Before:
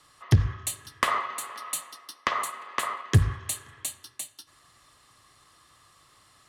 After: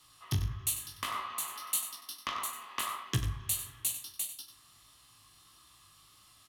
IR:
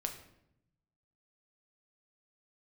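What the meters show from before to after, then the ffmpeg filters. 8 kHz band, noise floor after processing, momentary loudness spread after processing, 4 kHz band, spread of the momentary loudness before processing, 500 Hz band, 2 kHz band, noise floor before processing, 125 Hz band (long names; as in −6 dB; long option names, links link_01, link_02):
−0.5 dB, −61 dBFS, 5 LU, −2.0 dB, 14 LU, −13.0 dB, −10.0 dB, −61 dBFS, −11.0 dB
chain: -filter_complex "[0:a]equalizer=frequency=500:width_type=o:width=1:gain=-9,equalizer=frequency=2000:width_type=o:width=1:gain=-6,equalizer=frequency=8000:width_type=o:width=1:gain=-10,alimiter=limit=-19dB:level=0:latency=1:release=408,aexciter=amount=1.2:drive=9.3:freq=2400,flanger=delay=15.5:depth=5.8:speed=1.6,asplit=2[link_01][link_02];[link_02]adelay=39,volume=-13.5dB[link_03];[link_01][link_03]amix=inputs=2:normalize=0,aecho=1:1:95:0.282,asplit=2[link_04][link_05];[1:a]atrim=start_sample=2205,asetrate=41895,aresample=44100,adelay=42[link_06];[link_05][link_06]afir=irnorm=-1:irlink=0,volume=-13dB[link_07];[link_04][link_07]amix=inputs=2:normalize=0"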